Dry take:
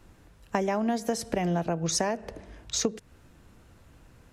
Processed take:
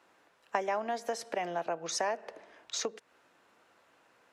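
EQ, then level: high-pass 600 Hz 12 dB/octave; low-pass 2.9 kHz 6 dB/octave; 0.0 dB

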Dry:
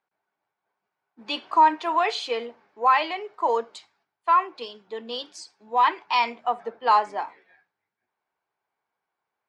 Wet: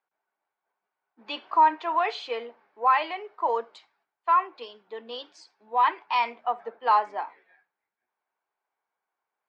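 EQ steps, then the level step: high-pass 530 Hz 6 dB/octave; distance through air 70 m; treble shelf 4.3 kHz -11 dB; 0.0 dB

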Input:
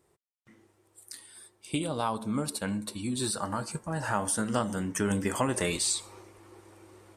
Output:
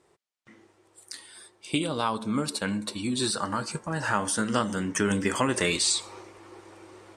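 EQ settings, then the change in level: low-pass 6.9 kHz 12 dB/octave; bass shelf 190 Hz -9.5 dB; dynamic bell 720 Hz, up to -7 dB, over -46 dBFS, Q 1.5; +7.0 dB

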